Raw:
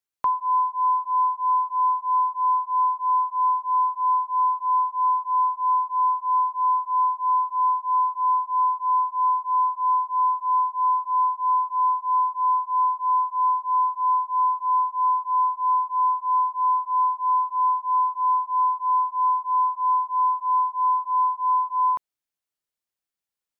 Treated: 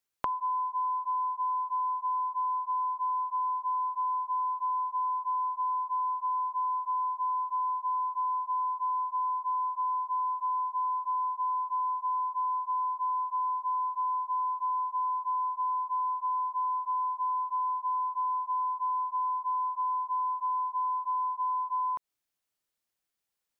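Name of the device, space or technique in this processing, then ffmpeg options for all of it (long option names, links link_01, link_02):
serial compression, leveller first: -af "acompressor=threshold=-26dB:ratio=2.5,acompressor=threshold=-32dB:ratio=6,volume=3dB"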